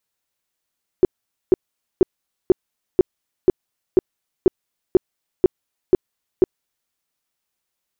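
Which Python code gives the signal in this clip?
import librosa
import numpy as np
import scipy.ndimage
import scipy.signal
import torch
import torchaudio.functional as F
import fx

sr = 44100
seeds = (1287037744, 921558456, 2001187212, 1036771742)

y = fx.tone_burst(sr, hz=369.0, cycles=7, every_s=0.49, bursts=12, level_db=-7.0)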